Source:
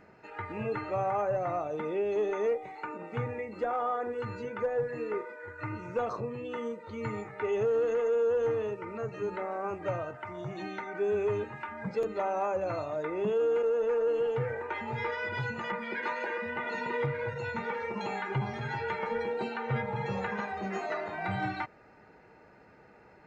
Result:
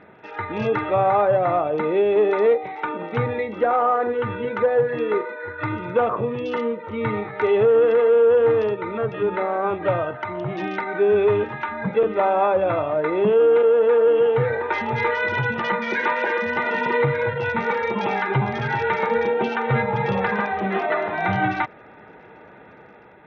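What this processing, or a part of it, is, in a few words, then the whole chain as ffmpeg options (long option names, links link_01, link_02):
Bluetooth headset: -af "highpass=frequency=110:poles=1,dynaudnorm=framelen=110:gausssize=9:maxgain=3dB,aresample=8000,aresample=44100,volume=9dB" -ar 48000 -c:a sbc -b:a 64k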